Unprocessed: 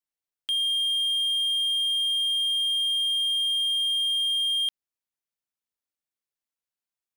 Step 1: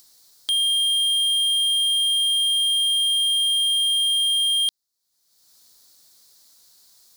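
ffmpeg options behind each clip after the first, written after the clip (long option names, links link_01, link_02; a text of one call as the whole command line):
ffmpeg -i in.wav -af "highshelf=frequency=3400:width_type=q:width=3:gain=8,acompressor=mode=upward:threshold=-37dB:ratio=2.5,volume=3.5dB" out.wav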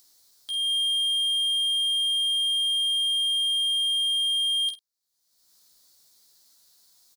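ffmpeg -i in.wav -filter_complex "[0:a]alimiter=limit=-18.5dB:level=0:latency=1:release=445,asplit=2[link_01][link_02];[link_02]adelay=49,volume=-10dB[link_03];[link_01][link_03]amix=inputs=2:normalize=0,asplit=2[link_04][link_05];[link_05]aecho=0:1:14|52:0.562|0.224[link_06];[link_04][link_06]amix=inputs=2:normalize=0,volume=-7dB" out.wav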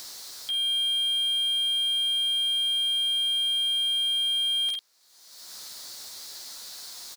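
ffmpeg -i in.wav -filter_complex "[0:a]asplit=2[link_01][link_02];[link_02]highpass=frequency=720:poles=1,volume=33dB,asoftclip=type=tanh:threshold=-21dB[link_03];[link_01][link_03]amix=inputs=2:normalize=0,lowpass=frequency=3500:poles=1,volume=-6dB" out.wav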